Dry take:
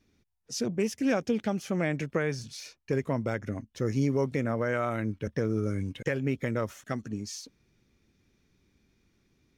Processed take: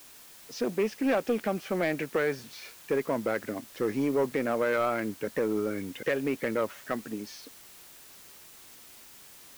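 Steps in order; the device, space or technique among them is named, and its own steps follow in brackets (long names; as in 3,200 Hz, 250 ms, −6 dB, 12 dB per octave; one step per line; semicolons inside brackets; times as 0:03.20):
tape answering machine (band-pass filter 310–2,800 Hz; soft clipping −24.5 dBFS, distortion −16 dB; tape wow and flutter; white noise bed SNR 20 dB)
level +5.5 dB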